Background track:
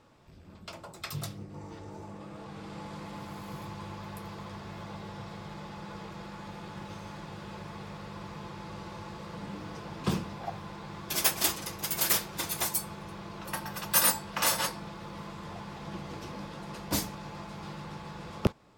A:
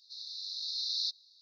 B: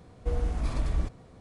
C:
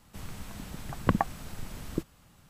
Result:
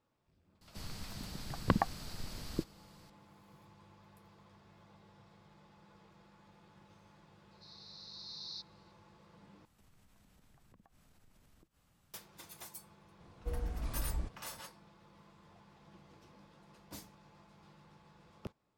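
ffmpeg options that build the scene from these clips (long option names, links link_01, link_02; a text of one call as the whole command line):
ffmpeg -i bed.wav -i cue0.wav -i cue1.wav -i cue2.wav -filter_complex "[3:a]asplit=2[link_01][link_02];[0:a]volume=-19.5dB[link_03];[link_01]equalizer=frequency=4600:width_type=o:width=0.54:gain=12[link_04];[link_02]acompressor=threshold=-51dB:ratio=4:attack=0.74:release=63:knee=1:detection=rms[link_05];[link_03]asplit=2[link_06][link_07];[link_06]atrim=end=9.654[link_08];[link_05]atrim=end=2.49,asetpts=PTS-STARTPTS,volume=-12.5dB[link_09];[link_07]atrim=start=12.136[link_10];[link_04]atrim=end=2.49,asetpts=PTS-STARTPTS,volume=-4.5dB,afade=type=in:duration=0.004:curve=hsin,afade=type=out:start_time=2.486:duration=0.004:curve=hsin,adelay=610[link_11];[1:a]atrim=end=1.41,asetpts=PTS-STARTPTS,volume=-12.5dB,afade=type=in:duration=0.004:curve=hsin,afade=type=out:start_time=1.406:duration=0.004:curve=hsin,adelay=7510[link_12];[2:a]atrim=end=1.4,asetpts=PTS-STARTPTS,volume=-9.5dB,afade=type=in:duration=0.004:curve=hsin,afade=type=out:start_time=1.396:duration=0.004:curve=hsin,adelay=13200[link_13];[link_08][link_09]acrossfade=duration=0.004:curve1=hsin:curve2=hsin[link_14];[link_14][link_10]acrossfade=duration=0.004:curve1=hsin:curve2=hsin[link_15];[link_15][link_11][link_12][link_13]amix=inputs=4:normalize=0" out.wav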